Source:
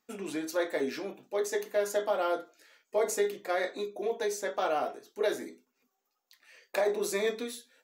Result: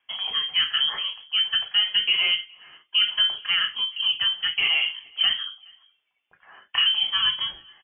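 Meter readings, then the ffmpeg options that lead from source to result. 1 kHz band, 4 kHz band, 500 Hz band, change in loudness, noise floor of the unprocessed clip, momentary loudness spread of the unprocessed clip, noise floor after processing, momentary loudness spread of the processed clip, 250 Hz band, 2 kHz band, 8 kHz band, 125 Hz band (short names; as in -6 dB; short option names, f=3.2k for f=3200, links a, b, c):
-3.0 dB, +27.0 dB, under -20 dB, +10.5 dB, -81 dBFS, 8 LU, -74 dBFS, 8 LU, under -15 dB, +11.5 dB, under -40 dB, n/a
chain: -filter_complex "[0:a]asplit=2[a][b];[b]alimiter=limit=-24dB:level=0:latency=1,volume=-2dB[c];[a][c]amix=inputs=2:normalize=0,asplit=2[d][e];[e]adelay=419.8,volume=-28dB,highshelf=f=4k:g=-9.45[f];[d][f]amix=inputs=2:normalize=0,lowpass=f=3k:t=q:w=0.5098,lowpass=f=3k:t=q:w=0.6013,lowpass=f=3k:t=q:w=0.9,lowpass=f=3k:t=q:w=2.563,afreqshift=-3500,volume=3.5dB"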